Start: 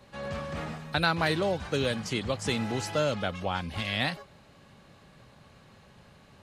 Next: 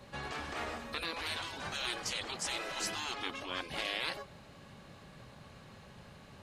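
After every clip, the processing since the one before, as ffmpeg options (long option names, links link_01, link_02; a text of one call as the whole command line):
ffmpeg -i in.wav -af "alimiter=limit=-20dB:level=0:latency=1:release=76,afftfilt=real='re*lt(hypot(re,im),0.0562)':imag='im*lt(hypot(re,im),0.0562)':win_size=1024:overlap=0.75,volume=1.5dB" out.wav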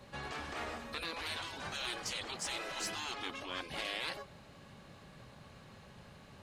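ffmpeg -i in.wav -af "asoftclip=type=tanh:threshold=-25.5dB,volume=-1.5dB" out.wav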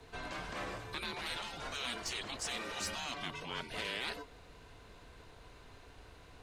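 ffmpeg -i in.wav -af "afreqshift=-120" out.wav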